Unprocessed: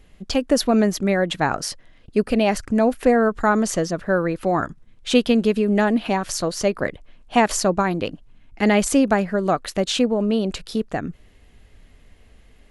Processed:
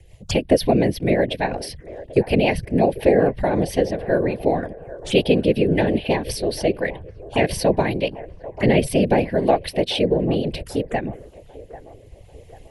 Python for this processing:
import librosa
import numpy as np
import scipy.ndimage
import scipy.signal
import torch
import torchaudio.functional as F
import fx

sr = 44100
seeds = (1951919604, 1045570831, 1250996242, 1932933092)

y = fx.graphic_eq(x, sr, hz=(125, 250, 4000), db=(-6, -7, -4))
y = fx.whisperise(y, sr, seeds[0])
y = fx.env_phaser(y, sr, low_hz=200.0, high_hz=1300.0, full_db=-26.5)
y = fx.rotary_switch(y, sr, hz=5.5, then_hz=0.65, switch_at_s=6.22)
y = fx.echo_wet_bandpass(y, sr, ms=792, feedback_pct=44, hz=760.0, wet_db=-15.5)
y = y * librosa.db_to_amplitude(8.0)